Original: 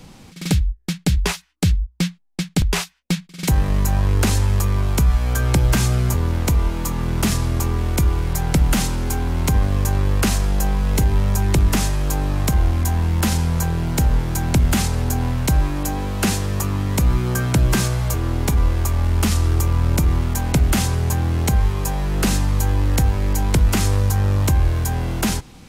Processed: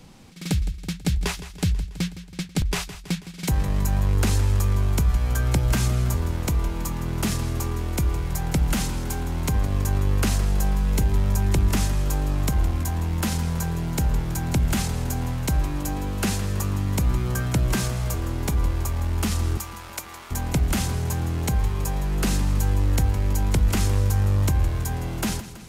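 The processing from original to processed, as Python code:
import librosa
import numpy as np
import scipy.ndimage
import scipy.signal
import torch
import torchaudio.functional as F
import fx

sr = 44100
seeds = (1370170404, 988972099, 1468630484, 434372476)

y = fx.highpass(x, sr, hz=830.0, slope=12, at=(19.57, 20.31))
y = fx.echo_feedback(y, sr, ms=163, feedback_pct=60, wet_db=-14)
y = F.gain(torch.from_numpy(y), -5.5).numpy()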